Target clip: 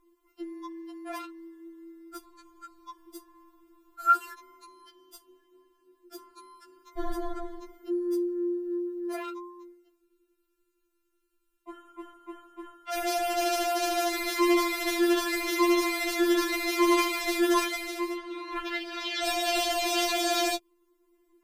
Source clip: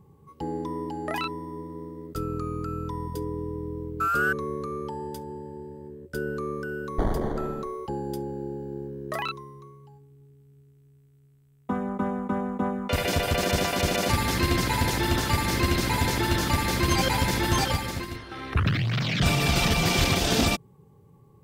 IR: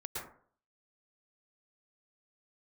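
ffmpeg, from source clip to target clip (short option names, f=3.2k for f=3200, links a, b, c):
-filter_complex "[0:a]acrossover=split=230|630|6600[a][b][c][d];[b]asoftclip=type=tanh:threshold=-27.5dB[e];[a][e][c][d]amix=inputs=4:normalize=0,afftfilt=real='re*4*eq(mod(b,16),0)':imag='im*4*eq(mod(b,16),0)':win_size=2048:overlap=0.75"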